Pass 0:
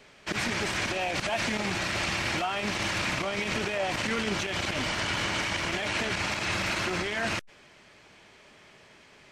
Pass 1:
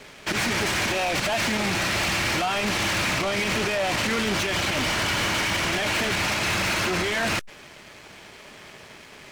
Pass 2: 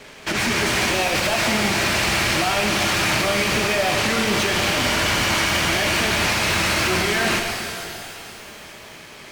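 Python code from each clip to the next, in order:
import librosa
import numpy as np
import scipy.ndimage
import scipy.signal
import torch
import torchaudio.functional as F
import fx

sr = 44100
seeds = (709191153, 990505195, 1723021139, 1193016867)

y1 = fx.leveller(x, sr, passes=3)
y2 = fx.rev_shimmer(y1, sr, seeds[0], rt60_s=2.6, semitones=12, shimmer_db=-8, drr_db=2.0)
y2 = y2 * librosa.db_to_amplitude(2.0)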